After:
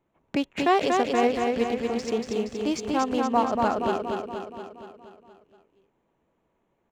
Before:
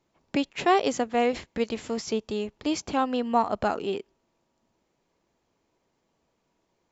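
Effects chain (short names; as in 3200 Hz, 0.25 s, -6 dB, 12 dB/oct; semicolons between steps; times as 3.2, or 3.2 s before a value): Wiener smoothing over 9 samples; feedback echo 0.236 s, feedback 59%, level -3.5 dB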